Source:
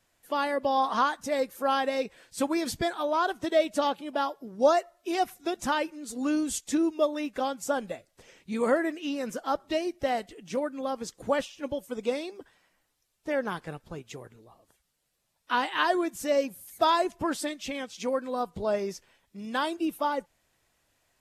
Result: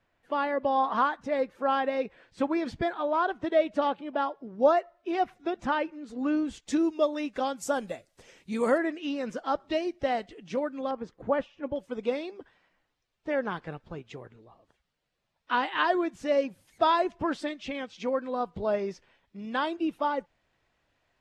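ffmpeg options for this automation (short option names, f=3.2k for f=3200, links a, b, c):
-af "asetnsamples=n=441:p=0,asendcmd='6.68 lowpass f 6100;7.56 lowpass f 11000;8.78 lowpass f 4400;10.91 lowpass f 1700;11.76 lowpass f 3500',lowpass=2.5k"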